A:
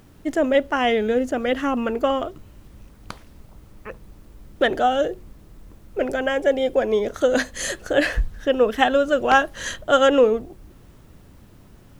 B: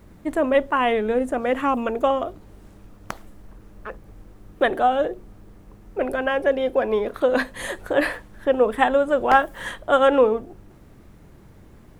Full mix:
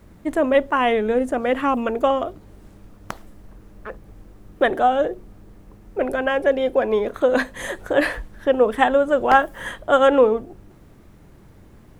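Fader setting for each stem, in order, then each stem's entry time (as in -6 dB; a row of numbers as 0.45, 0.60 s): -13.5, 0.0 dB; 0.00, 0.00 s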